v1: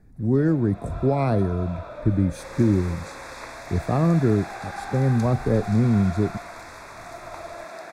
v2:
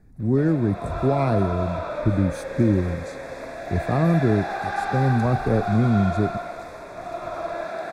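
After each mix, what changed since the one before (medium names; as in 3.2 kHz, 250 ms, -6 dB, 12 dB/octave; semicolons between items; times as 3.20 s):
first sound +8.5 dB; second sound -7.0 dB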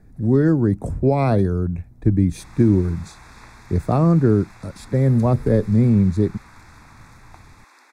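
speech +4.0 dB; first sound: muted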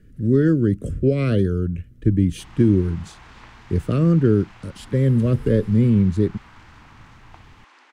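speech: add Chebyshev band-stop 500–1400 Hz, order 2; background: add distance through air 90 m; master: remove Butterworth band-stop 3 kHz, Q 3.2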